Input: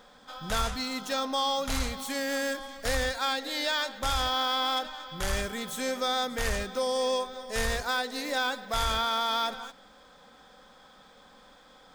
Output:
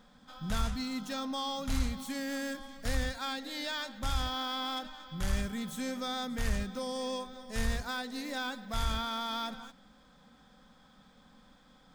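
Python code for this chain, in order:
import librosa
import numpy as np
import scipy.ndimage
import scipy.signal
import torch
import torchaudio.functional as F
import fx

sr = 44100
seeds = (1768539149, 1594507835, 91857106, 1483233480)

y = fx.low_shelf_res(x, sr, hz=300.0, db=8.5, q=1.5)
y = y * librosa.db_to_amplitude(-7.5)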